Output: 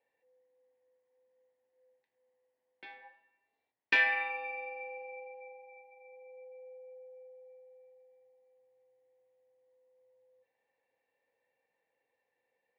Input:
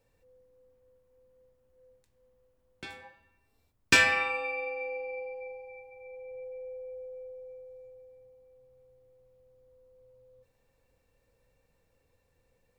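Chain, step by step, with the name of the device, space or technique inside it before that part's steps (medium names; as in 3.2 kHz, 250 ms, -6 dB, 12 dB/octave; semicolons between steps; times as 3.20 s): phone earpiece (cabinet simulation 400–3600 Hz, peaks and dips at 820 Hz +7 dB, 1.3 kHz -10 dB, 1.9 kHz +10 dB); trim -8 dB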